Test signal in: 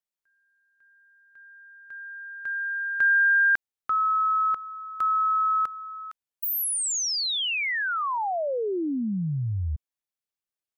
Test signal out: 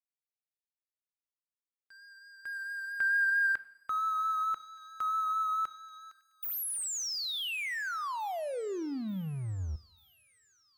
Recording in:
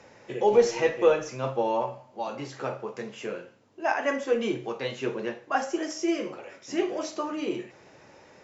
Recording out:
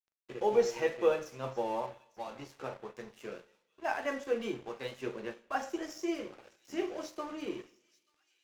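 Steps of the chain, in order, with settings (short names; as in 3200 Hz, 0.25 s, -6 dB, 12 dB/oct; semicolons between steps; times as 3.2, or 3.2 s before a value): crossover distortion -43 dBFS; vibrato 4.5 Hz 23 cents; on a send: thin delay 0.885 s, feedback 59%, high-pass 3200 Hz, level -20 dB; on the sum: two-slope reverb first 0.69 s, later 2.3 s, from -25 dB, DRR 15.5 dB; gain -7 dB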